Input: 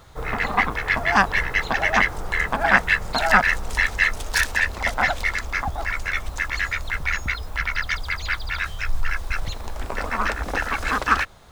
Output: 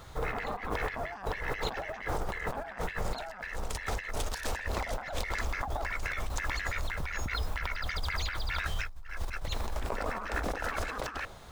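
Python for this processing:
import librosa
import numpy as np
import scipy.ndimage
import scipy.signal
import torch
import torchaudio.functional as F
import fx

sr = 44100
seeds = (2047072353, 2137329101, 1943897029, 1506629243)

y = fx.dynamic_eq(x, sr, hz=520.0, q=0.97, threshold_db=-37.0, ratio=4.0, max_db=6)
y = fx.over_compress(y, sr, threshold_db=-29.0, ratio=-1.0)
y = F.gain(torch.from_numpy(y), -6.0).numpy()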